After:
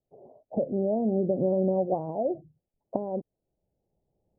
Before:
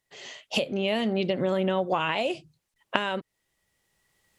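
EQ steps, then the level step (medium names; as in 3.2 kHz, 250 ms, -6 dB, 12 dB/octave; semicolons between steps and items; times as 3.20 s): steep low-pass 750 Hz 48 dB/octave; +1.0 dB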